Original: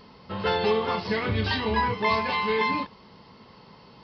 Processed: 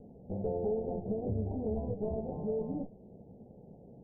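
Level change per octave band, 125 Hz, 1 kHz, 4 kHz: -5.5 dB, -21.5 dB, under -40 dB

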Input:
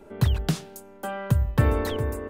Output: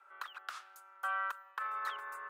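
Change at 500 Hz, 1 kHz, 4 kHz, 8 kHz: -27.0 dB, -3.0 dB, -13.0 dB, -17.5 dB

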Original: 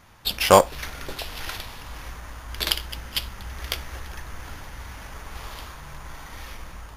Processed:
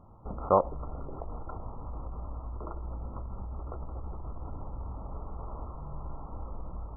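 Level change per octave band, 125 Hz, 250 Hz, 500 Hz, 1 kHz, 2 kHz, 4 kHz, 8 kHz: -2.5 dB, -6.5 dB, -9.0 dB, -8.5 dB, under -30 dB, under -40 dB, under -40 dB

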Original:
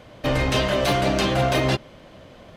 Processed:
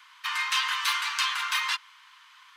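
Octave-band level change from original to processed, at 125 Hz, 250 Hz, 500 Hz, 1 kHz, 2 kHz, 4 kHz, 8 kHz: under -40 dB, under -40 dB, under -40 dB, -5.0 dB, 0.0 dB, 0.0 dB, 0.0 dB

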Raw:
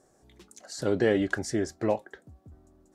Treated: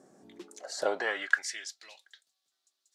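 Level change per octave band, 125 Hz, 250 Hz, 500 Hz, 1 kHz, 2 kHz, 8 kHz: under -30 dB, -19.5 dB, -8.5 dB, -1.0 dB, +4.5 dB, +0.5 dB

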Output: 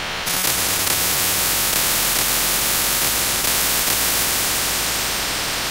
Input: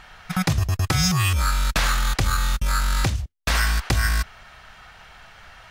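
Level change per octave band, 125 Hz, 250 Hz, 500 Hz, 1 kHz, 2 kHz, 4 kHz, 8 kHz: -11.0 dB, -1.5 dB, +8.0 dB, +3.0 dB, +4.5 dB, +9.5 dB, +13.5 dB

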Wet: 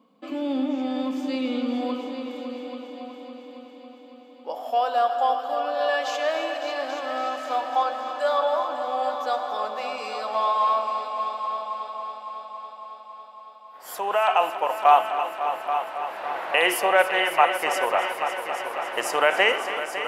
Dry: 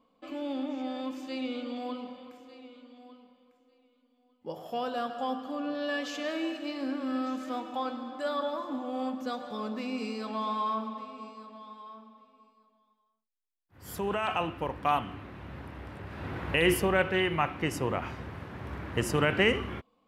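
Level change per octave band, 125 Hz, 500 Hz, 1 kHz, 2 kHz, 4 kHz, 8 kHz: under -20 dB, +7.5 dB, +12.0 dB, +7.5 dB, +7.0 dB, +6.5 dB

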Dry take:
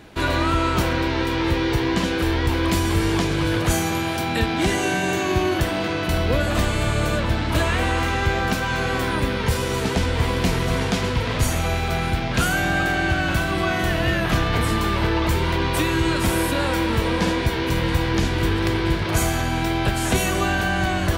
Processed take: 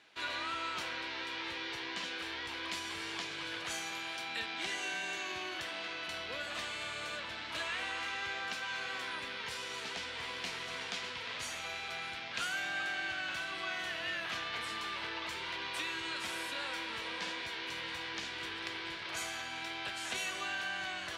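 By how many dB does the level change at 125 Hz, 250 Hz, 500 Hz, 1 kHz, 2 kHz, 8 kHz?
-36.0 dB, -27.5 dB, -23.0 dB, -17.0 dB, -12.0 dB, -15.0 dB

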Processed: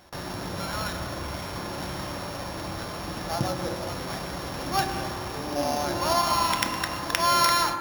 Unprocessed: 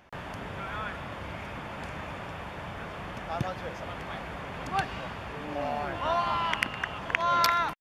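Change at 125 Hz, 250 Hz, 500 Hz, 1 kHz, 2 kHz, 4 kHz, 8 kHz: +5.0 dB, +7.0 dB, +4.5 dB, +3.5 dB, +0.5 dB, +8.0 dB, +14.5 dB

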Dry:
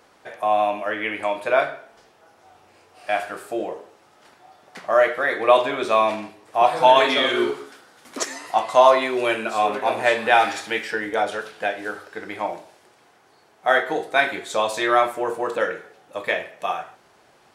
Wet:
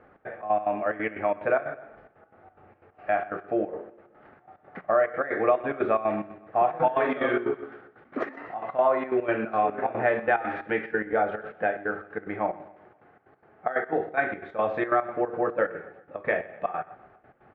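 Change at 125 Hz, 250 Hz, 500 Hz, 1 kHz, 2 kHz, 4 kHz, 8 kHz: +1.5 dB, -1.5 dB, -5.0 dB, -7.0 dB, -7.0 dB, under -20 dB, under -40 dB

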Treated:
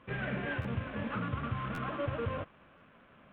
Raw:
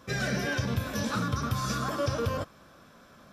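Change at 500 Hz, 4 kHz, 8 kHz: -5.5 dB, -12.5 dB, under -30 dB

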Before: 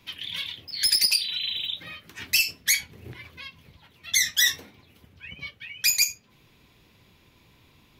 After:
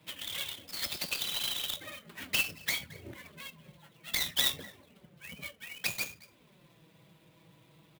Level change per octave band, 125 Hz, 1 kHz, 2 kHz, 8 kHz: -2.5 dB, +3.5 dB, -8.5 dB, -13.5 dB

